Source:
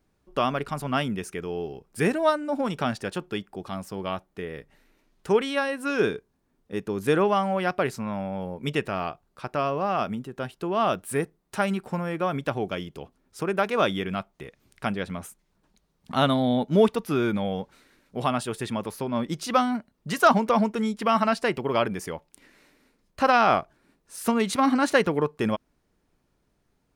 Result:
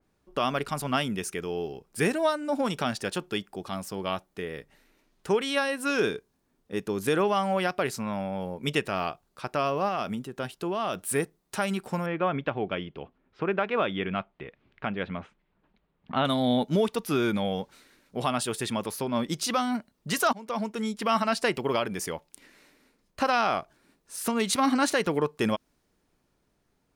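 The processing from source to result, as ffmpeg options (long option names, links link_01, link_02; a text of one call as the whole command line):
ffmpeg -i in.wav -filter_complex "[0:a]asettb=1/sr,asplit=3[link_01][link_02][link_03];[link_01]atrim=end=9.884[link_04];[link_02]atrim=start=9.88:end=11.05,asetpts=PTS-STARTPTS,afade=type=in:duration=0.004:curve=qsin,afade=type=out:start_time=1.166:duration=0.004:curve=qsin,acompressor=threshold=-25dB:ratio=6:attack=3.2:release=140:knee=1:detection=peak[link_05];[link_03]atrim=start=11.046[link_06];[link_04][link_05]acrossfade=duration=0.004:curve1=hsin:curve2=qsin[link_07];[link_07][link_06]acrossfade=duration=0.004:curve1=qsin:curve2=hsin,asettb=1/sr,asplit=3[link_08][link_09][link_10];[link_08]atrim=end=12.064[link_11];[link_09]atrim=start=12.06:end=16.25,asetpts=PTS-STARTPTS,afade=type=in:duration=0.004:curve=qsin,afade=type=out:start_time=4.186:duration=0.004:curve=qsin,lowpass=frequency=3000:width=0.5412,lowpass=frequency=3000:width=1.3066[link_12];[link_10]atrim=start=16.246[link_13];[link_11][link_12]acrossfade=duration=0.004:curve1=hsin:curve2=qsin[link_14];[link_14][link_13]acrossfade=duration=0.004:curve1=qsin:curve2=hsin,asplit=2[link_15][link_16];[link_15]atrim=end=20.33,asetpts=PTS-STARTPTS,afade=type=out:start_time=20.326:duration=0.004:curve=hsin:silence=0.0944061[link_17];[link_16]atrim=start=20.33,asetpts=PTS-STARTPTS,afade=type=in:duration=0.79:silence=0.0944061[link_18];[link_17][link_18]concat=n=2:v=0:a=1,lowshelf=frequency=140:gain=-4,alimiter=limit=-15dB:level=0:latency=1:release=188,adynamicequalizer=threshold=0.00631:dfrequency=2800:dqfactor=0.7:tfrequency=2800:tqfactor=0.7:attack=5:release=100:ratio=0.375:range=3:mode=boostabove:tftype=highshelf" out.wav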